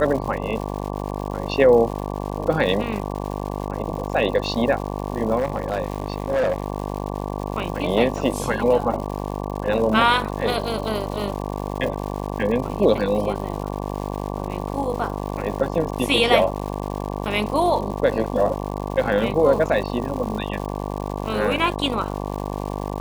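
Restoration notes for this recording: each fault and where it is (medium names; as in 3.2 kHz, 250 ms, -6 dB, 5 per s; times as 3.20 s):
buzz 50 Hz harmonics 23 -28 dBFS
crackle 230 per s -30 dBFS
5.38–6.64 s: clipped -17 dBFS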